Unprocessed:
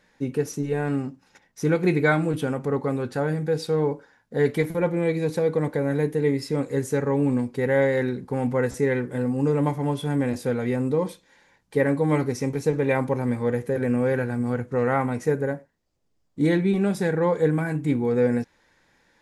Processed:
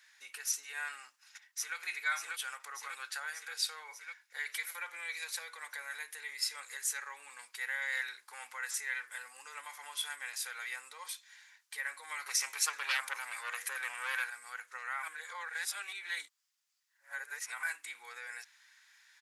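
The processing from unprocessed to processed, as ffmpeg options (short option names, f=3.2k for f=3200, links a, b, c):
-filter_complex "[0:a]asplit=2[a][b];[b]afade=t=in:st=1.03:d=0.01,afade=t=out:st=1.77:d=0.01,aecho=0:1:590|1180|1770|2360|2950|3540|4130|4720|5310:0.749894|0.449937|0.269962|0.161977|0.0971863|0.0583118|0.0349871|0.0209922|0.0125953[c];[a][c]amix=inputs=2:normalize=0,asettb=1/sr,asplit=3[d][e][f];[d]atrim=end=3.834[g];[e]atrim=start=3.83:end=4.47,asetpts=PTS-STARTPTS,afade=t=in:d=0.004:c=qsin,afade=t=out:st=0.636:d=0.004:c=qsin,equalizer=f=2.2k:w=7.1:g=8.5[h];[f]atrim=start=4.466[i];[g][h]acrossfade=d=0.004:c1=hsin:c2=qsin[j];[j][i]acrossfade=d=0.004:c1=qsin:c2=hsin,asettb=1/sr,asplit=3[k][l][m];[k]atrim=end=7.754[n];[l]atrim=start=7.75:end=8.56,asetpts=PTS-STARTPTS,afade=t=in:d=0.004:c=qsin,afade=t=out:st=0.806:d=0.004:c=qsin,highpass=130[o];[m]atrim=start=8.556[p];[n][o]acrossfade=d=0.004:c1=hsin:c2=qsin[q];[q][p]acrossfade=d=0.004:c1=qsin:c2=hsin,asettb=1/sr,asplit=3[r][s][t];[r]atrim=end=12.264[u];[s]atrim=start=12.26:end=14.3,asetpts=PTS-STARTPTS,afade=t=in:d=0.004:c=qsin,afade=t=out:st=2.036:d=0.004:c=qsin,aeval=exprs='0.355*sin(PI/2*2.51*val(0)/0.355)':c=same[v];[t]atrim=start=14.296[w];[u][v]acrossfade=d=0.004:c1=hsin:c2=qsin[x];[x][w]acrossfade=d=0.004:c1=qsin:c2=hsin,asplit=3[y][z][aa];[y]atrim=end=15.032[ab];[z]atrim=start=15.028:end=17.632,asetpts=PTS-STARTPTS,areverse[ac];[aa]atrim=start=17.628[ad];[ab][ac]acrossfade=d=0.004:c1=hsin:c2=hsin[ae];[ae][ad]acrossfade=d=0.004:c1=hsin:c2=hsin,highshelf=f=3.7k:g=6.5,alimiter=limit=-18.5dB:level=0:latency=1:release=95,highpass=f=1.3k:w=0.5412,highpass=f=1.3k:w=1.3066"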